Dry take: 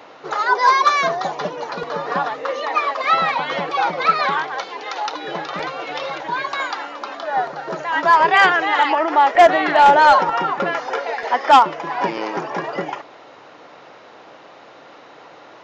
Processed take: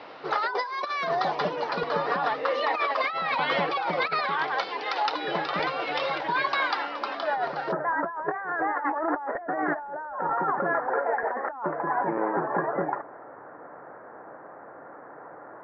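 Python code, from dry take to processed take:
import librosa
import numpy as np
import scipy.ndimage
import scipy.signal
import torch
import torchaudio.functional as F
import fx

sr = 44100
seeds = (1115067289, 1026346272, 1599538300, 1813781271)

y = fx.ellip_lowpass(x, sr, hz=fx.steps((0.0, 5100.0), (7.71, 1700.0)), order=4, stop_db=50)
y = fx.over_compress(y, sr, threshold_db=-23.0, ratio=-1.0)
y = y * librosa.db_to_amplitude(-5.0)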